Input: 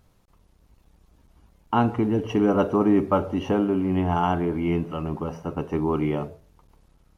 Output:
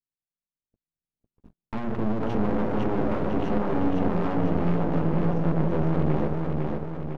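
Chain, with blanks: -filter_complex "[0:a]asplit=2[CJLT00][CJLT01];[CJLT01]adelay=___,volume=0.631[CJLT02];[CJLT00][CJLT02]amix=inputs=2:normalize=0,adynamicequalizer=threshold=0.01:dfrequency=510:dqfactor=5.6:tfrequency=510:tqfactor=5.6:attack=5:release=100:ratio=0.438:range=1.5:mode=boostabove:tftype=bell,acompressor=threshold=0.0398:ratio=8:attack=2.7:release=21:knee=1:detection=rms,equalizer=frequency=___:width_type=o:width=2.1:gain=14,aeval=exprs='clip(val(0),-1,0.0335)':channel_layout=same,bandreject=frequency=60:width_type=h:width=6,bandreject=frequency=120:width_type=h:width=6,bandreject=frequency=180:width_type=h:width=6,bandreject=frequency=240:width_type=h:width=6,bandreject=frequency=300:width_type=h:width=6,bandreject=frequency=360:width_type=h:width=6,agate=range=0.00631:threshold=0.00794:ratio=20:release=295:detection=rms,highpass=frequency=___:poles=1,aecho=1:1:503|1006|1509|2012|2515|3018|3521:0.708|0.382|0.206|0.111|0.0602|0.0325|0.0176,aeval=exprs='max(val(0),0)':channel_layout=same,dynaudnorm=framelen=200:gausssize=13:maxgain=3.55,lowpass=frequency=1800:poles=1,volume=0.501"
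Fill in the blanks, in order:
18, 170, 76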